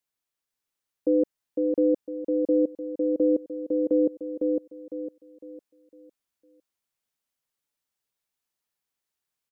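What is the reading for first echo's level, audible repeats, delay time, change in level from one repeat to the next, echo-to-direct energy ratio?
-3.5 dB, 4, 0.505 s, -9.0 dB, -3.0 dB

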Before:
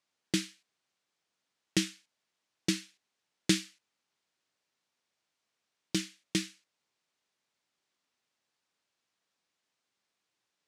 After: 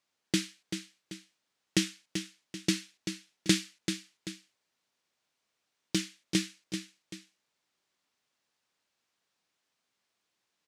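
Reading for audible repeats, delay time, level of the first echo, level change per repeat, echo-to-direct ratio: 2, 0.387 s, -8.0 dB, -8.0 dB, -7.5 dB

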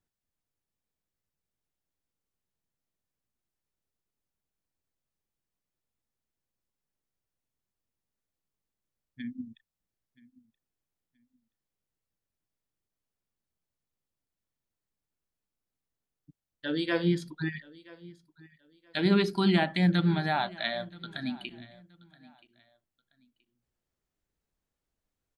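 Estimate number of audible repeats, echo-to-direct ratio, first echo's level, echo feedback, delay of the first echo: 2, -21.5 dB, -22.0 dB, 27%, 0.976 s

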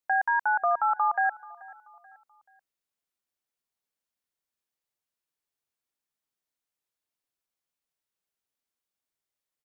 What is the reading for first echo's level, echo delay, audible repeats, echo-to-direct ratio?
-21.5 dB, 0.433 s, 2, -21.0 dB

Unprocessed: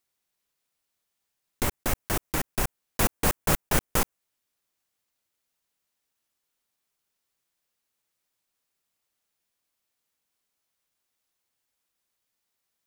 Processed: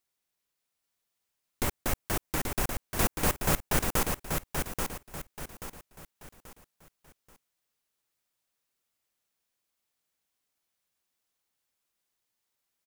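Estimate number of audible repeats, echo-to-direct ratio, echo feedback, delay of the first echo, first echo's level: 4, -4.5 dB, 35%, 0.833 s, -5.0 dB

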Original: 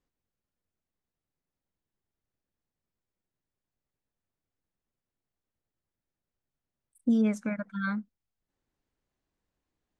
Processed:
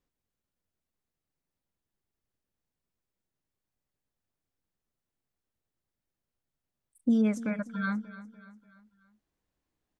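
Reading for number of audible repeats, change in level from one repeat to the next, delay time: 3, -6.5 dB, 0.293 s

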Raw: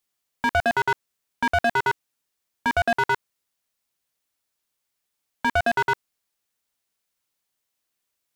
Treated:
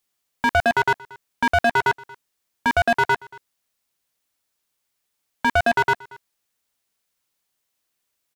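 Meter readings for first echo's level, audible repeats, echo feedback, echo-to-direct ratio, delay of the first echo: -22.5 dB, 1, no steady repeat, -22.5 dB, 0.231 s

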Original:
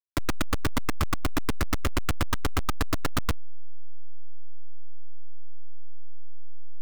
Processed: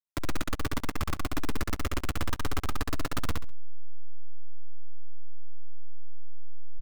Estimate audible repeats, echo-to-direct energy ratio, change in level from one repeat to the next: 3, -3.0 dB, -13.0 dB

